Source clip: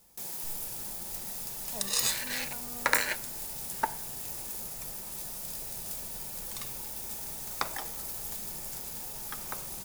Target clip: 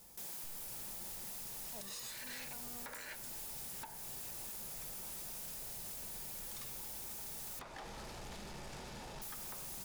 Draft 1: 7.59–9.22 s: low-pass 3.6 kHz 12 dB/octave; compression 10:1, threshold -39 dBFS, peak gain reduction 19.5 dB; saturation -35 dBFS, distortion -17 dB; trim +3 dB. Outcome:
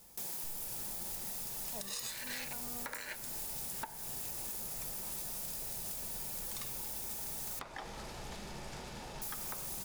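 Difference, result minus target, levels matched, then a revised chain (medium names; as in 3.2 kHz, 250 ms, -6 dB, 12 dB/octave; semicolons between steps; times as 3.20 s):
saturation: distortion -9 dB
7.59–9.22 s: low-pass 3.6 kHz 12 dB/octave; compression 10:1, threshold -39 dBFS, peak gain reduction 19.5 dB; saturation -46 dBFS, distortion -8 dB; trim +3 dB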